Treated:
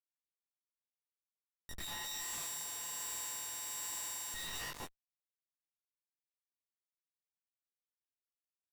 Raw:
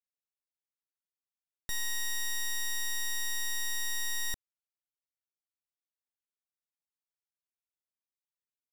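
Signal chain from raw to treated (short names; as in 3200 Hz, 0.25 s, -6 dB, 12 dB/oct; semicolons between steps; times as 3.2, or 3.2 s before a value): one diode to ground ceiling -31.5 dBFS; limiter -33 dBFS, peak gain reduction 5 dB; on a send: thin delay 0.252 s, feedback 56%, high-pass 2300 Hz, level -3.5 dB; on the sum: plate-style reverb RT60 0.78 s, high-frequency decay 0.8×, pre-delay 85 ms, DRR 1 dB; Schmitt trigger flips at -43.5 dBFS; detuned doubles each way 44 cents; gain +6.5 dB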